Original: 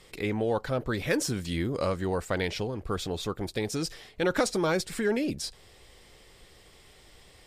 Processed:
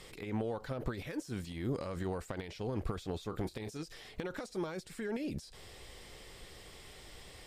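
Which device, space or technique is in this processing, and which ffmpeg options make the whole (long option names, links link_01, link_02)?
de-esser from a sidechain: -filter_complex "[0:a]asettb=1/sr,asplit=3[link_01][link_02][link_03];[link_01]atrim=end=3.274[link_04];[link_02]atrim=start=3.27:end=3.85,asetpts=PTS-STARTPTS,afade=type=in:duration=0.004:curve=qsin,afade=type=out:start_time=0.576:duration=0.004:curve=qsin,asplit=2[link_05][link_06];[link_06]adelay=27,volume=-12dB[link_07];[link_05][link_07]amix=inputs=2:normalize=0,atrim=end_sample=25578[link_08];[link_03]atrim=start=3.846[link_09];[link_04][link_08]acrossfade=duration=0.004:curve1=hsin:curve2=qsin[link_10];[link_10][link_09]acrossfade=duration=0.004:curve1=qsin:curve2=hsin,asplit=2[link_11][link_12];[link_12]highpass=frequency=5900:poles=1,apad=whole_len=329284[link_13];[link_11][link_13]sidechaincompress=threshold=-58dB:ratio=6:attack=2.2:release=46,volume=3.5dB"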